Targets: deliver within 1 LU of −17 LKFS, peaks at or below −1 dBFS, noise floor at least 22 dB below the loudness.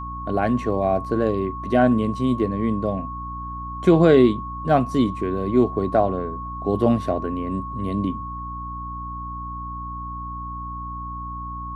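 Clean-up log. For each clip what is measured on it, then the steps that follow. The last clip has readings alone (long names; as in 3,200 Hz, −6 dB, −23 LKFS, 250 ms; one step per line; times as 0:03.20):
mains hum 60 Hz; hum harmonics up to 300 Hz; level of the hum −32 dBFS; interfering tone 1,100 Hz; level of the tone −31 dBFS; integrated loudness −23.0 LKFS; sample peak −3.5 dBFS; target loudness −17.0 LKFS
→ hum removal 60 Hz, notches 5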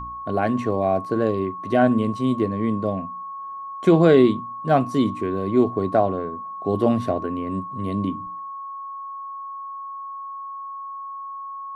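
mains hum none found; interfering tone 1,100 Hz; level of the tone −31 dBFS
→ notch filter 1,100 Hz, Q 30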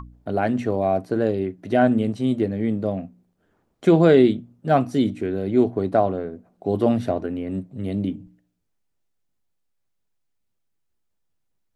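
interfering tone none found; integrated loudness −22.0 LKFS; sample peak −3.5 dBFS; target loudness −17.0 LKFS
→ level +5 dB
brickwall limiter −1 dBFS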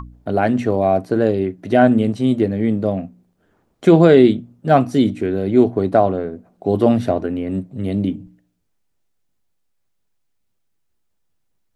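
integrated loudness −17.0 LKFS; sample peak −1.0 dBFS; background noise floor −68 dBFS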